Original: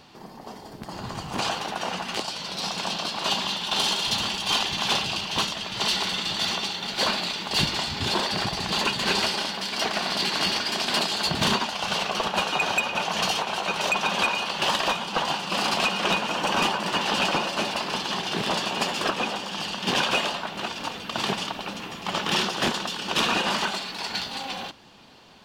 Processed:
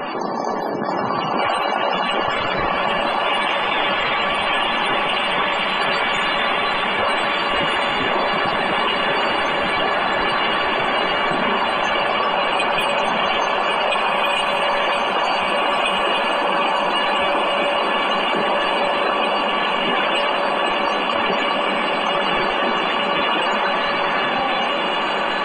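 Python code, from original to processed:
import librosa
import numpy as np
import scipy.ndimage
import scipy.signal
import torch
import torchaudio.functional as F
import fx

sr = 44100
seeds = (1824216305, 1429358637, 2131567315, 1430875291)

p1 = fx.tracing_dist(x, sr, depth_ms=0.11)
p2 = scipy.signal.sosfilt(scipy.signal.butter(2, 290.0, 'highpass', fs=sr, output='sos'), p1)
p3 = fx.high_shelf(p2, sr, hz=5500.0, db=-7.0)
p4 = fx.rider(p3, sr, range_db=5, speed_s=0.5)
p5 = p3 + (p4 * 10.0 ** (0.5 / 20.0))
p6 = fx.sample_hold(p5, sr, seeds[0], rate_hz=5600.0, jitter_pct=20)
p7 = fx.comb_fb(p6, sr, f0_hz=570.0, decay_s=0.21, harmonics='all', damping=0.0, mix_pct=70)
p8 = fx.fold_sine(p7, sr, drive_db=9, ceiling_db=-11.5)
p9 = fx.spec_topn(p8, sr, count=64)
p10 = p9 + fx.echo_diffused(p9, sr, ms=1656, feedback_pct=60, wet_db=-5.5, dry=0)
p11 = fx.env_flatten(p10, sr, amount_pct=70)
y = p11 * 10.0 ** (-3.0 / 20.0)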